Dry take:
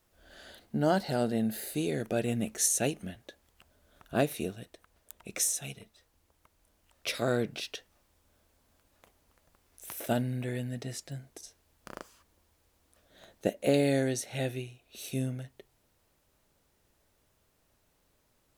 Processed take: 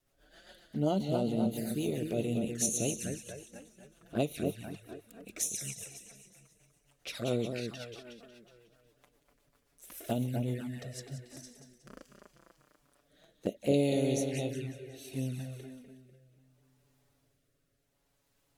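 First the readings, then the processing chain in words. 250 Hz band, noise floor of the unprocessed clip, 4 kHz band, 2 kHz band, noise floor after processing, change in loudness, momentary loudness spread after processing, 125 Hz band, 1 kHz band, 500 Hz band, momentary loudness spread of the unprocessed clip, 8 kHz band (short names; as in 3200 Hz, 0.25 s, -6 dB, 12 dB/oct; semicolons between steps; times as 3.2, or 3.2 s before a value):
-0.5 dB, -72 dBFS, -4.0 dB, -7.5 dB, -75 dBFS, -2.5 dB, 19 LU, -0.5 dB, -5.5 dB, -2.0 dB, 21 LU, -3.5 dB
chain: split-band echo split 2400 Hz, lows 0.246 s, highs 0.182 s, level -6 dB; envelope flanger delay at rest 7.4 ms, full sweep at -26.5 dBFS; rotary speaker horn 7.5 Hz, later 0.7 Hz, at 10.51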